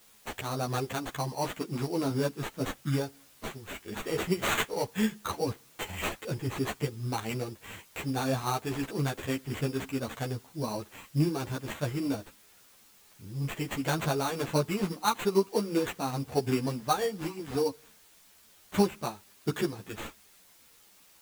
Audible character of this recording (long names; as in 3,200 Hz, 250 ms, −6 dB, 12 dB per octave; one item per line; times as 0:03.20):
aliases and images of a low sample rate 5,100 Hz, jitter 0%
tremolo triangle 1.6 Hz, depth 30%
a quantiser's noise floor 10 bits, dither triangular
a shimmering, thickened sound